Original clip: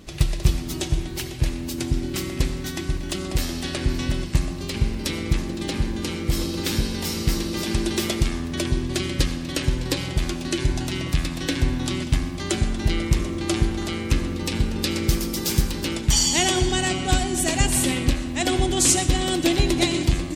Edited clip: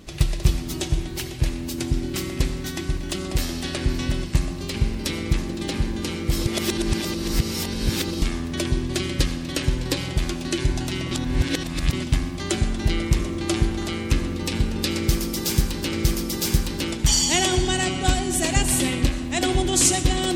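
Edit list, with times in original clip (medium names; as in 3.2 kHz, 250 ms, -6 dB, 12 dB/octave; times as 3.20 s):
6.46–8.22 s: reverse
11.11–11.93 s: reverse
14.97–15.93 s: loop, 2 plays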